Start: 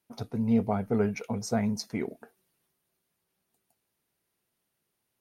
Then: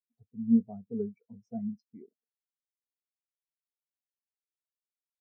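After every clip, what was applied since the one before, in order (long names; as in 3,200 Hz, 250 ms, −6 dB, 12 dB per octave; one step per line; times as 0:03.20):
every bin expanded away from the loudest bin 2.5 to 1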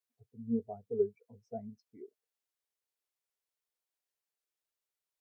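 drawn EQ curve 130 Hz 0 dB, 190 Hz −14 dB, 420 Hz +8 dB, 990 Hz +5 dB
tape wow and flutter 29 cents
level −1.5 dB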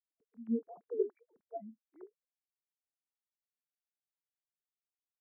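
three sine waves on the formant tracks
level −2 dB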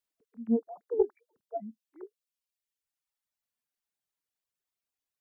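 reverb reduction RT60 1.3 s
highs frequency-modulated by the lows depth 0.2 ms
level +7 dB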